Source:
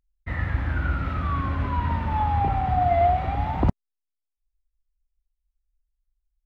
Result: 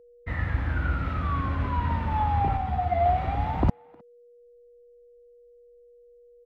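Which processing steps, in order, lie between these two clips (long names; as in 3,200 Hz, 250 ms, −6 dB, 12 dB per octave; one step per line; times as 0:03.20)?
far-end echo of a speakerphone 310 ms, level −25 dB
steady tone 480 Hz −50 dBFS
0:02.57–0:03.06: string-ensemble chorus
level −1.5 dB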